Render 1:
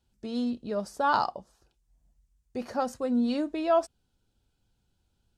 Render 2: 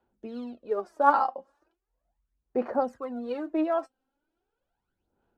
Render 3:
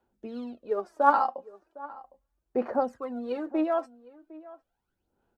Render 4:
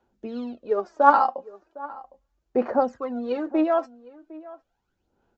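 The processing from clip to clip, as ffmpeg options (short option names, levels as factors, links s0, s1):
-filter_complex "[0:a]acrossover=split=280 2000:gain=0.1 1 0.0891[s0][s1][s2];[s0][s1][s2]amix=inputs=3:normalize=0,aphaser=in_gain=1:out_gain=1:delay=3.8:decay=0.7:speed=0.38:type=sinusoidal"
-filter_complex "[0:a]asplit=2[s0][s1];[s1]adelay=758,volume=0.112,highshelf=f=4000:g=-17.1[s2];[s0][s2]amix=inputs=2:normalize=0"
-af "aresample=16000,aresample=44100,volume=1.78"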